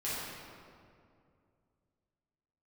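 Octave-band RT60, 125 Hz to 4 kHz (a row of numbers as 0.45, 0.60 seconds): 3.1, 2.8, 2.6, 2.2, 1.7, 1.3 seconds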